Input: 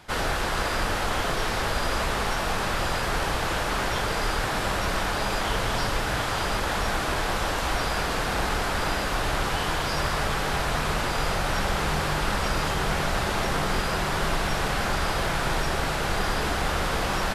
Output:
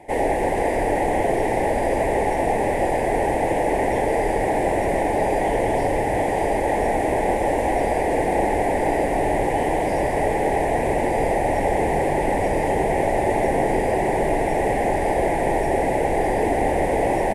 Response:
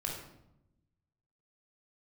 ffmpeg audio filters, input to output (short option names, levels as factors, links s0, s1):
-filter_complex "[0:a]asplit=2[s0][s1];[s1]asoftclip=type=hard:threshold=0.0596,volume=0.251[s2];[s0][s2]amix=inputs=2:normalize=0,firequalizer=gain_entry='entry(190,0);entry(280,11);entry(480,12);entry(850,11);entry(1300,-28);entry(1900,7);entry(3000,-10);entry(4200,-16);entry(9500,3);entry(14000,-11)':delay=0.05:min_phase=1,asplit=6[s3][s4][s5][s6][s7][s8];[s4]adelay=160,afreqshift=-130,volume=0.282[s9];[s5]adelay=320,afreqshift=-260,volume=0.13[s10];[s6]adelay=480,afreqshift=-390,volume=0.0596[s11];[s7]adelay=640,afreqshift=-520,volume=0.0275[s12];[s8]adelay=800,afreqshift=-650,volume=0.0126[s13];[s3][s9][s10][s11][s12][s13]amix=inputs=6:normalize=0,volume=0.75"